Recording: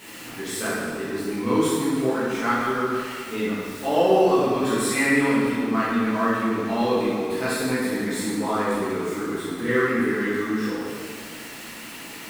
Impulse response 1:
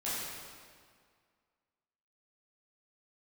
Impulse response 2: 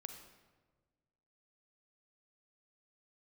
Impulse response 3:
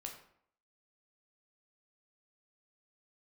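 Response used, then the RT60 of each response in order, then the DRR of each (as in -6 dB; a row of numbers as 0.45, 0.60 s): 1; 2.0, 1.4, 0.65 s; -11.0, 5.5, 1.5 dB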